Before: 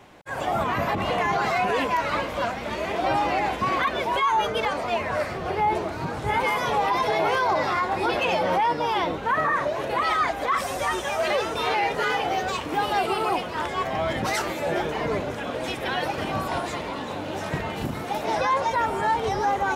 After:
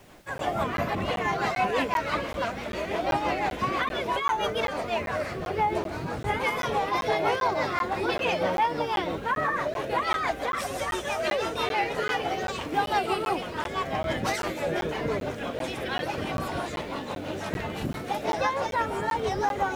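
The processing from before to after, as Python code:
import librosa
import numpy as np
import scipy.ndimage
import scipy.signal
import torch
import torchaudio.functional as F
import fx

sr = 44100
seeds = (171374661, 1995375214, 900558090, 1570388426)

y = fx.wow_flutter(x, sr, seeds[0], rate_hz=2.1, depth_cents=26.0)
y = fx.rotary(y, sr, hz=6.0)
y = fx.dmg_noise_colour(y, sr, seeds[1], colour='pink', level_db=-58.0)
y = fx.buffer_crackle(y, sr, first_s=0.38, period_s=0.39, block=512, kind='zero')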